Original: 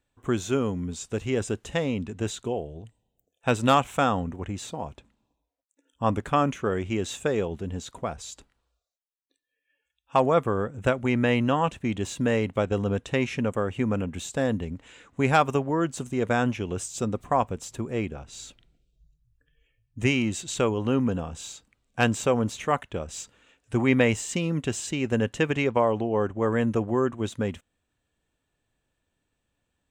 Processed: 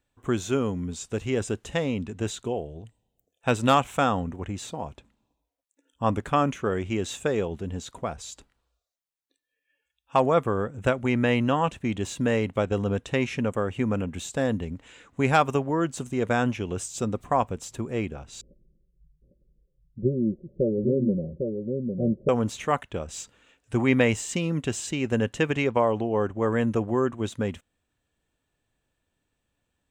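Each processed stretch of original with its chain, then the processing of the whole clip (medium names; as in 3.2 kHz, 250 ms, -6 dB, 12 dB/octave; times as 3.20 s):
18.41–22.29 s: steep low-pass 600 Hz 96 dB/octave + comb 5.4 ms + delay 803 ms -5 dB
whole clip: none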